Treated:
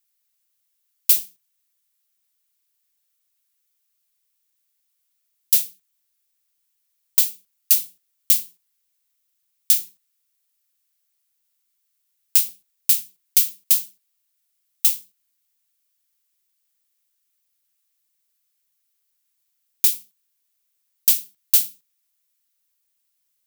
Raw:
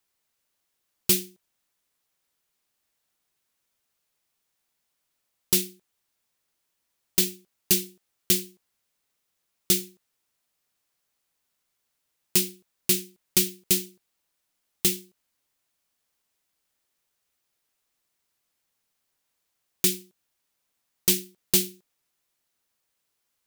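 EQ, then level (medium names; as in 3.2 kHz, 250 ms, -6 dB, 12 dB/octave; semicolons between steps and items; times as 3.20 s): amplifier tone stack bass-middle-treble 10-0-10; treble shelf 11 kHz +9.5 dB; 0.0 dB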